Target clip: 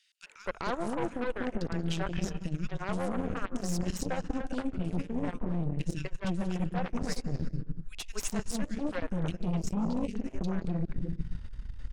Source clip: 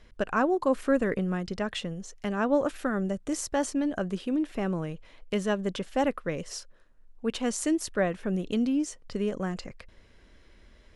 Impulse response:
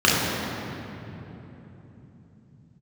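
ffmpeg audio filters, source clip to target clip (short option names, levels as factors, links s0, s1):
-filter_complex "[0:a]asubboost=boost=8.5:cutoff=140,acrossover=split=450|2800[s0][s1][s2];[s1]adelay=230[s3];[s0]adelay=410[s4];[s4][s3][s2]amix=inputs=3:normalize=0,asetrate=40517,aresample=44100,asplit=2[s5][s6];[1:a]atrim=start_sample=2205,afade=t=out:st=0.31:d=0.01,atrim=end_sample=14112,adelay=147[s7];[s6][s7]afir=irnorm=-1:irlink=0,volume=0.0158[s8];[s5][s8]amix=inputs=2:normalize=0,aeval=exprs='0.251*(cos(1*acos(clip(val(0)/0.251,-1,1)))-cos(1*PI/2))+0.0158*(cos(3*acos(clip(val(0)/0.251,-1,1)))-cos(3*PI/2))+0.0355*(cos(8*acos(clip(val(0)/0.251,-1,1)))-cos(8*PI/2))':c=same,areverse,acompressor=threshold=0.0316:ratio=10,areverse,volume=1.5"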